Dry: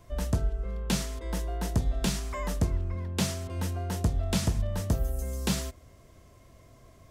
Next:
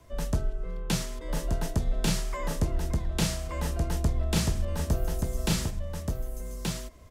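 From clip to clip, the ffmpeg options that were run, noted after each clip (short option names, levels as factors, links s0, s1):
-af "afreqshift=-18,aecho=1:1:1178:0.668"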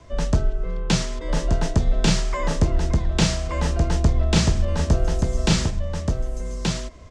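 -af "lowpass=f=7300:w=0.5412,lowpass=f=7300:w=1.3066,volume=2.51"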